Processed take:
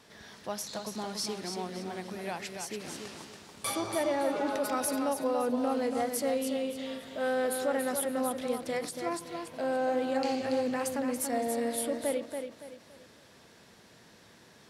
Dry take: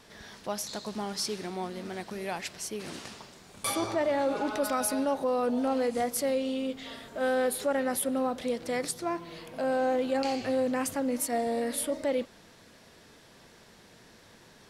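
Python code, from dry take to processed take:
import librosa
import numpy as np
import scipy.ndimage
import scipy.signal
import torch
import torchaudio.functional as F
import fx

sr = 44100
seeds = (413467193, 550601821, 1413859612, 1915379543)

y = scipy.signal.sosfilt(scipy.signal.butter(2, 67.0, 'highpass', fs=sr, output='sos'), x)
y = fx.echo_feedback(y, sr, ms=283, feedback_pct=32, wet_db=-6)
y = fx.end_taper(y, sr, db_per_s=180.0)
y = y * 10.0 ** (-2.5 / 20.0)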